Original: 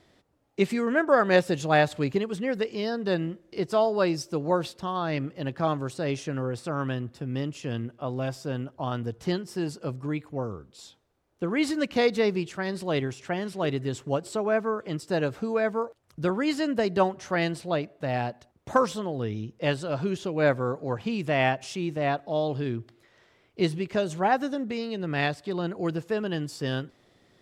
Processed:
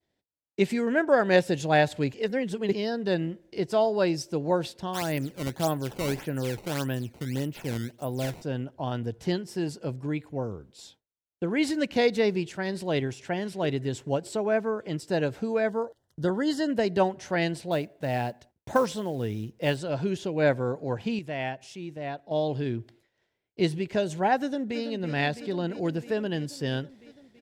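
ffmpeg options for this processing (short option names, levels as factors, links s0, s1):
-filter_complex "[0:a]asplit=3[s0][s1][s2];[s0]afade=t=out:st=4.93:d=0.02[s3];[s1]acrusher=samples=15:mix=1:aa=0.000001:lfo=1:lforange=24:lforate=1.7,afade=t=in:st=4.93:d=0.02,afade=t=out:st=8.41:d=0.02[s4];[s2]afade=t=in:st=8.41:d=0.02[s5];[s3][s4][s5]amix=inputs=3:normalize=0,asettb=1/sr,asplit=3[s6][s7][s8];[s6]atrim=end=15.704[s9];[s7]atrim=start=15.7:end=16.7,asetpts=PTS-STARTPTS,afade=t=in:d=0.004:c=qsin,afade=t=out:st=0.996:d=0.004:c=qsin,asuperstop=centerf=2400:order=8:qfactor=2.7[s10];[s8]atrim=start=16.696[s11];[s9][s10]acrossfade=d=0.004:c1=hsin:c2=qsin[s12];[s12][s11]acrossfade=d=0.004:c1=qsin:c2=hsin,asettb=1/sr,asplit=3[s13][s14][s15];[s13]atrim=end=17.714[s16];[s14]atrim=start=17.71:end=19.78,asetpts=PTS-STARTPTS,afade=t=in:d=0.004:c=qsin,afade=t=out:st=2.066:d=0.004:c=qsin,acrusher=bits=7:mode=log:mix=0:aa=0.000001[s17];[s15]atrim=start=19.776[s18];[s16][s17]acrossfade=d=0.004:c1=hsin:c2=qsin[s19];[s19][s18]acrossfade=d=0.004:c1=qsin:c2=hsin,asplit=2[s20][s21];[s21]afade=t=in:st=24.4:d=0.01,afade=t=out:st=24.8:d=0.01,aecho=0:1:330|660|990|1320|1650|1980|2310|2640|2970|3300|3630|3960:0.316228|0.252982|0.202386|0.161909|0.129527|0.103622|0.0828972|0.0663178|0.0530542|0.0424434|0.0339547|0.0271638[s22];[s20][s22]amix=inputs=2:normalize=0,asplit=5[s23][s24][s25][s26][s27];[s23]atrim=end=2.142[s28];[s24]atrim=start=2.138:end=2.732,asetpts=PTS-STARTPTS,areverse[s29];[s25]atrim=start=2.728:end=21.192[s30];[s26]atrim=start=21.188:end=22.312,asetpts=PTS-STARTPTS,volume=0.398[s31];[s27]atrim=start=22.308[s32];[s28][s29]acrossfade=d=0.004:c1=hsin:c2=hsin[s33];[s33][s30]acrossfade=d=0.004:c1=hsin:c2=hsin[s34];[s34][s31]acrossfade=d=0.004:c1=hsin:c2=hsin[s35];[s35][s32]acrossfade=d=0.004:c1=hsin:c2=hsin,agate=range=0.0224:threshold=0.00316:ratio=3:detection=peak,equalizer=f=1200:w=6:g=-12"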